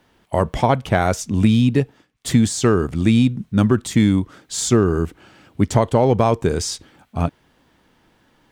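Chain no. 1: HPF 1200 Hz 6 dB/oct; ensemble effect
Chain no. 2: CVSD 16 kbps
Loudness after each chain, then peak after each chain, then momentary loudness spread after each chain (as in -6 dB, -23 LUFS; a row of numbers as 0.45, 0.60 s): -30.5, -20.5 LUFS; -11.5, -5.0 dBFS; 12, 11 LU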